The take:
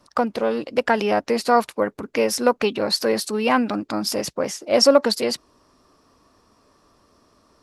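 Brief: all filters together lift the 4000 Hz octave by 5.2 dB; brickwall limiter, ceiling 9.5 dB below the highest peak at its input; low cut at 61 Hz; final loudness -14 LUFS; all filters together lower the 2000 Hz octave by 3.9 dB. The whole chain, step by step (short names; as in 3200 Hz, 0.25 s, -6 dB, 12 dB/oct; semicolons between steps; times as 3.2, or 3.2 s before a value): HPF 61 Hz; bell 2000 Hz -8 dB; bell 4000 Hz +8.5 dB; gain +8.5 dB; limiter -2 dBFS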